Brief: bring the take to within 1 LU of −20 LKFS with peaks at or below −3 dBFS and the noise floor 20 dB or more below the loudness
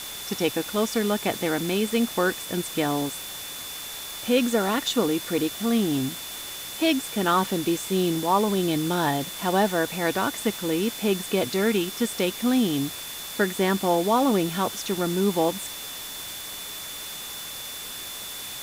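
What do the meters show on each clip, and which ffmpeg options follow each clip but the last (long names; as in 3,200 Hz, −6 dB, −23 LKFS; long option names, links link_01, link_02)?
interfering tone 3,500 Hz; level of the tone −39 dBFS; background noise floor −36 dBFS; target noise floor −46 dBFS; integrated loudness −25.5 LKFS; sample peak −9.0 dBFS; target loudness −20.0 LKFS
→ -af "bandreject=frequency=3500:width=30"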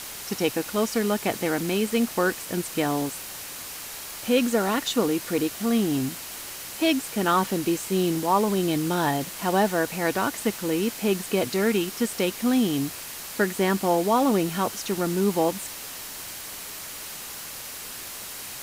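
interfering tone none found; background noise floor −38 dBFS; target noise floor −46 dBFS
→ -af "afftdn=noise_reduction=8:noise_floor=-38"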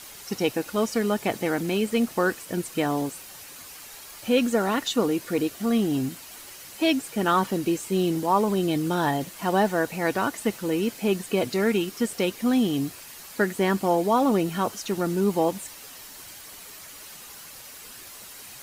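background noise floor −44 dBFS; target noise floor −45 dBFS
→ -af "afftdn=noise_reduction=6:noise_floor=-44"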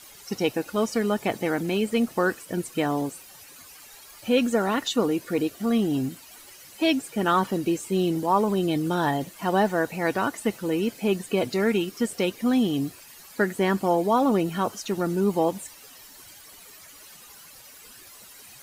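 background noise floor −48 dBFS; integrated loudness −25.0 LKFS; sample peak −9.5 dBFS; target loudness −20.0 LKFS
→ -af "volume=5dB"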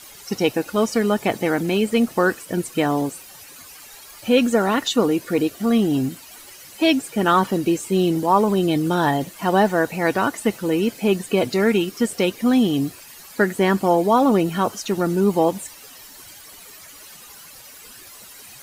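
integrated loudness −20.0 LKFS; sample peak −4.5 dBFS; background noise floor −43 dBFS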